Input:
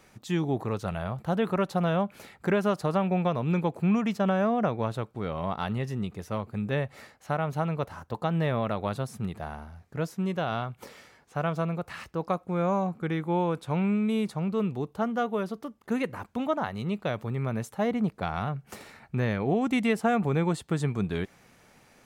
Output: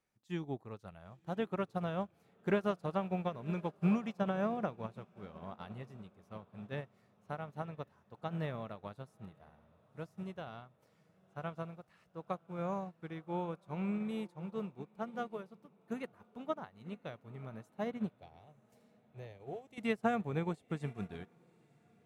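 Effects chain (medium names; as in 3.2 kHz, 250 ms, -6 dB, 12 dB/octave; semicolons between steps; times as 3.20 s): 18.18–19.78 s: static phaser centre 550 Hz, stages 4; echo that smears into a reverb 1012 ms, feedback 60%, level -13 dB; upward expansion 2.5:1, over -36 dBFS; trim -5 dB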